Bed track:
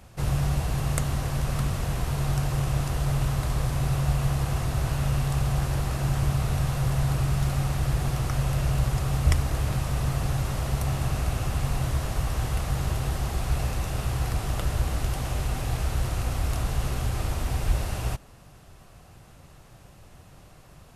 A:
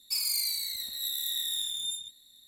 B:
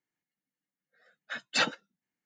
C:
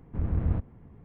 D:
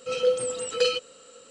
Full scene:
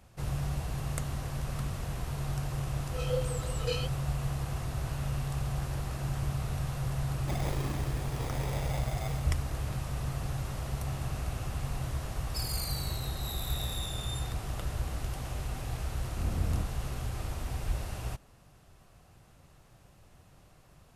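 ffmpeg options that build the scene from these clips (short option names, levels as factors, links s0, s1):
-filter_complex "[1:a]asplit=2[s0][s1];[0:a]volume=0.398[s2];[4:a]flanger=delay=17:depth=6:speed=2.8[s3];[s0]acrusher=samples=31:mix=1:aa=0.000001[s4];[s1]aresample=32000,aresample=44100[s5];[s3]atrim=end=1.5,asetpts=PTS-STARTPTS,volume=0.422,afade=t=in:d=0.004:c=hsin,afade=t=out:st=1.496:d=0.004:c=hsin,adelay=2870[s6];[s4]atrim=end=2.47,asetpts=PTS-STARTPTS,volume=0.422,afade=t=in:d=0.004:c=hsin,afade=t=out:st=2.466:d=0.004:c=hsin,adelay=7170[s7];[s5]atrim=end=2.47,asetpts=PTS-STARTPTS,volume=0.376,afade=t=in:d=0.004:c=hsin,afade=t=out:st=2.466:d=0.004:c=hsin,adelay=12240[s8];[3:a]atrim=end=1.04,asetpts=PTS-STARTPTS,volume=0.562,afade=t=in:d=0.004:c=hsin,afade=t=out:st=1.036:d=0.004:c=hsin,adelay=16030[s9];[s2][s6][s7][s8][s9]amix=inputs=5:normalize=0"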